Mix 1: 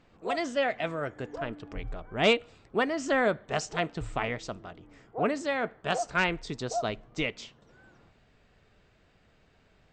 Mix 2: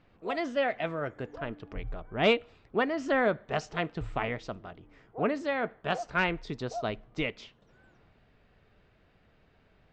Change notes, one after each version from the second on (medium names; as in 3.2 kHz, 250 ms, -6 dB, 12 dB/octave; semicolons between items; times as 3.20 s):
speech: add distance through air 150 m; background -5.5 dB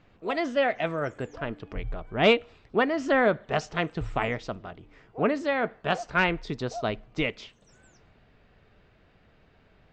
speech +4.0 dB; background: remove Savitzky-Golay filter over 41 samples